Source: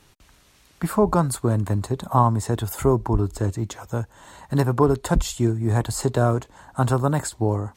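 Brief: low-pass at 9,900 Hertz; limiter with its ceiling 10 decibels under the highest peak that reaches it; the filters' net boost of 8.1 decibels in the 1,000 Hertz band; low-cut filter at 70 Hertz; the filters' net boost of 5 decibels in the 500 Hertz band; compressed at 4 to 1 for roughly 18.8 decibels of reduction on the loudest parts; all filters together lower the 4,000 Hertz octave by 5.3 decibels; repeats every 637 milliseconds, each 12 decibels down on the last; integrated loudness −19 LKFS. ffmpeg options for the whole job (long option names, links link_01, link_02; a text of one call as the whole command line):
ffmpeg -i in.wav -af "highpass=70,lowpass=9900,equalizer=frequency=500:width_type=o:gain=4.5,equalizer=frequency=1000:width_type=o:gain=8.5,equalizer=frequency=4000:width_type=o:gain=-7,acompressor=threshold=-30dB:ratio=4,alimiter=limit=-23.5dB:level=0:latency=1,aecho=1:1:637|1274|1911:0.251|0.0628|0.0157,volume=17dB" out.wav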